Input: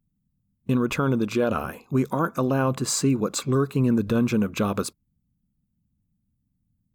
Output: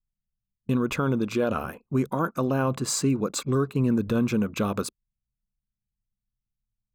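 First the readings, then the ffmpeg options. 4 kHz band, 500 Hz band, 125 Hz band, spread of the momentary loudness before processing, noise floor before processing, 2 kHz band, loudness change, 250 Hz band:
-2.0 dB, -2.0 dB, -2.0 dB, 5 LU, -75 dBFS, -2.0 dB, -2.0 dB, -2.0 dB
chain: -af "anlmdn=0.158,volume=0.794"

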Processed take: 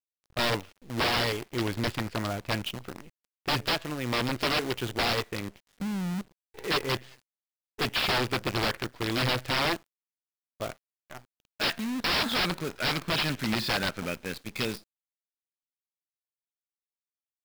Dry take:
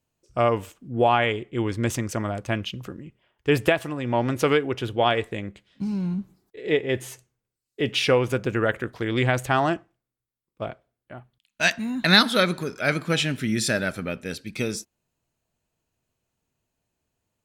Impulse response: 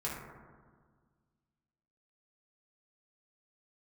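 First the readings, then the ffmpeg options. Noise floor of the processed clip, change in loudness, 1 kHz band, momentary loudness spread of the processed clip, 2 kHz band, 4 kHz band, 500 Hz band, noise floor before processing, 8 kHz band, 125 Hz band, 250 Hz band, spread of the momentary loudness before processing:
under -85 dBFS, -5.0 dB, -5.5 dB, 13 LU, -4.5 dB, -1.5 dB, -9.0 dB, under -85 dBFS, -5.5 dB, -6.0 dB, -6.5 dB, 13 LU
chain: -af "equalizer=f=2000:w=0.58:g=3.5,aresample=11025,aeval=exprs='(mod(6.31*val(0)+1,2)-1)/6.31':c=same,aresample=44100,acrusher=bits=6:dc=4:mix=0:aa=0.000001,volume=0.596"

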